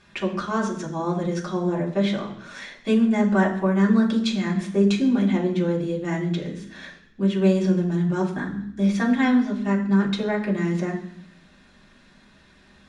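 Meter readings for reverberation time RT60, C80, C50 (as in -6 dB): 0.65 s, 12.0 dB, 9.5 dB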